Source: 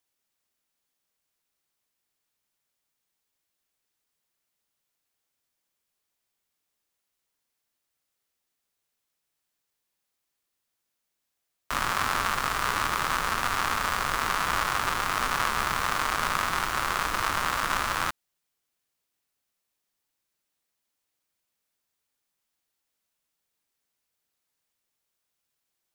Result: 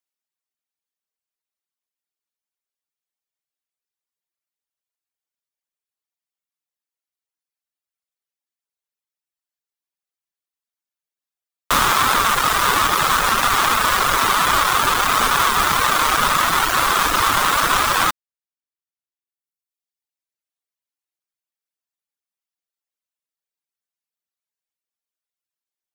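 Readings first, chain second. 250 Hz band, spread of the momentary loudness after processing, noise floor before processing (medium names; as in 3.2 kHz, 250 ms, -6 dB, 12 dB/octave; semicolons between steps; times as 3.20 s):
+10.0 dB, 1 LU, -82 dBFS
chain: reverb removal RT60 1.8 s; bass shelf 280 Hz -9 dB; waveshaping leveller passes 5; trim +2 dB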